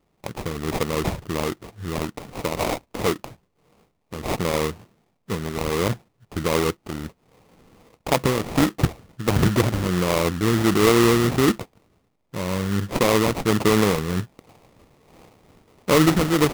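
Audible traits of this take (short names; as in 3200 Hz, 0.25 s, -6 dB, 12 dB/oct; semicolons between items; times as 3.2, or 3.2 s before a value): phasing stages 4, 1.4 Hz, lowest notch 650–2400 Hz; aliases and images of a low sample rate 1600 Hz, jitter 20%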